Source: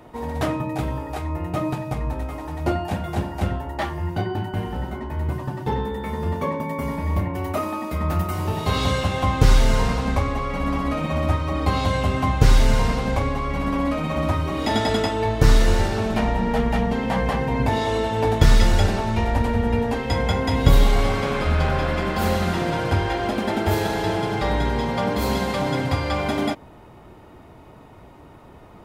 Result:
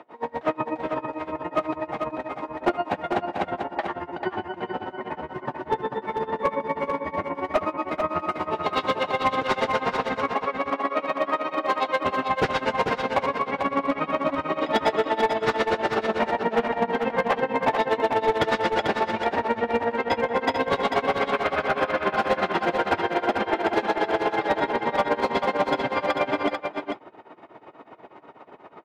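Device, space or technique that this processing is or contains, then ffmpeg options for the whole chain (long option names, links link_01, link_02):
helicopter radio: -filter_complex "[0:a]highpass=380,lowpass=2600,aeval=exprs='val(0)*pow(10,-31*(0.5-0.5*cos(2*PI*8.2*n/s))/20)':channel_layout=same,asoftclip=type=hard:threshold=-22dB,asettb=1/sr,asplit=3[link_01][link_02][link_03];[link_01]atrim=end=10.294[link_04];[link_02]atrim=start=10.29:end=12,asetpts=PTS-STARTPTS,afade=type=in:duration=0.004:curve=qsin,afade=type=out:start_time=1.706:duration=0.004:curve=qsin,highpass=280[link_05];[link_03]atrim=start=11.996[link_06];[link_04][link_05]acrossfade=duration=0.004:curve1=hsin:curve2=qsin[link_07];[link_07][link_06]acrossfade=duration=0.004:curve1=qsin:curve2=hsin,aecho=1:1:443:0.531,volume=8dB"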